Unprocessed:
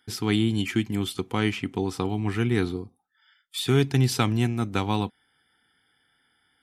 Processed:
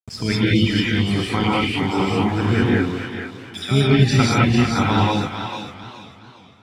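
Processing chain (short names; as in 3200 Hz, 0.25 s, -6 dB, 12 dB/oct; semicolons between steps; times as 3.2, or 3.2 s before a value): random spectral dropouts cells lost 32%; bell 350 Hz -6.5 dB 1.2 oct; loudest bins only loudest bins 64; non-linear reverb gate 0.23 s rising, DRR -5.5 dB; harmoniser +7 st -14 dB; sample gate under -40 dBFS; air absorption 52 m; thinning echo 0.449 s, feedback 31%, high-pass 1000 Hz, level -5.5 dB; warbling echo 0.418 s, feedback 47%, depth 133 cents, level -16 dB; gain +5.5 dB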